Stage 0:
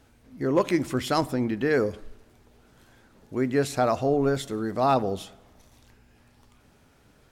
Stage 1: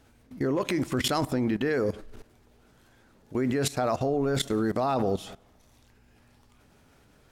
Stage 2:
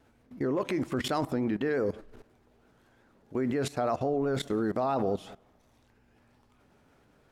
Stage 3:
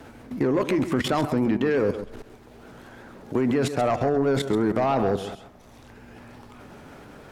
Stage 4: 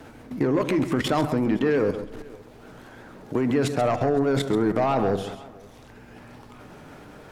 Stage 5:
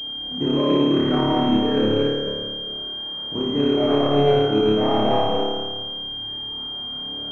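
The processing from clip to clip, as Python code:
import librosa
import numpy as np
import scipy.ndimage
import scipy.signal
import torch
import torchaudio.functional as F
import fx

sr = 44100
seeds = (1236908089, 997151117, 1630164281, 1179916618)

y1 = fx.level_steps(x, sr, step_db=17)
y1 = y1 * 10.0 ** (8.5 / 20.0)
y2 = fx.high_shelf(y1, sr, hz=2700.0, db=-9.5)
y2 = fx.vibrato(y2, sr, rate_hz=5.7, depth_cents=55.0)
y2 = fx.low_shelf(y2, sr, hz=130.0, db=-7.5)
y2 = y2 * 10.0 ** (-1.0 / 20.0)
y3 = fx.fold_sine(y2, sr, drive_db=4, ceiling_db=-17.0)
y3 = y3 + 10.0 ** (-12.0 / 20.0) * np.pad(y3, (int(133 * sr / 1000.0), 0))[:len(y3)]
y3 = fx.band_squash(y3, sr, depth_pct=40)
y4 = y3 + 10.0 ** (-24.0 / 20.0) * np.pad(y3, (int(512 * sr / 1000.0), 0))[:len(y3)]
y4 = fx.room_shoebox(y4, sr, seeds[0], volume_m3=2300.0, walls='furnished', distance_m=0.5)
y5 = fx.reverse_delay(y4, sr, ms=209, wet_db=-0.5)
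y5 = fx.room_flutter(y5, sr, wall_m=4.8, rt60_s=1.4)
y5 = fx.pwm(y5, sr, carrier_hz=3200.0)
y5 = y5 * 10.0 ** (-5.5 / 20.0)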